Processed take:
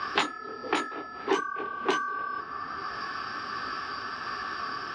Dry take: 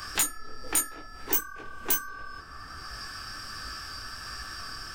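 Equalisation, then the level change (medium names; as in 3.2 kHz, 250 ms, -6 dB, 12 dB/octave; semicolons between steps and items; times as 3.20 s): cabinet simulation 170–4000 Hz, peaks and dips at 250 Hz +4 dB, 400 Hz +9 dB, 780 Hz +5 dB, 1.1 kHz +7 dB; +4.5 dB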